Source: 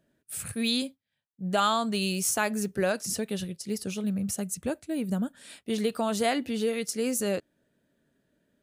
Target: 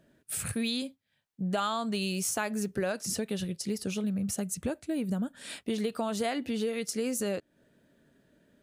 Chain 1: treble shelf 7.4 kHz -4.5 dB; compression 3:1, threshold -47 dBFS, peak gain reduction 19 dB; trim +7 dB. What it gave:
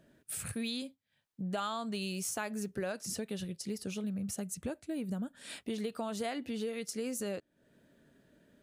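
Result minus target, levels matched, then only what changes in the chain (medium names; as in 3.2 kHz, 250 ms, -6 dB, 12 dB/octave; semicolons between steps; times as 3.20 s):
compression: peak gain reduction +5.5 dB
change: compression 3:1, threshold -38.5 dBFS, peak gain reduction 13.5 dB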